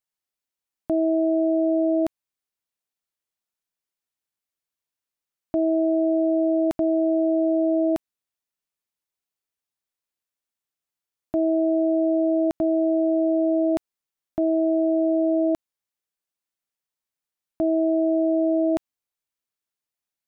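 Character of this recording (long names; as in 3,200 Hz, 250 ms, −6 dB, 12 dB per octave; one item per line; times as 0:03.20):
background noise floor −89 dBFS
spectral slope +2.0 dB per octave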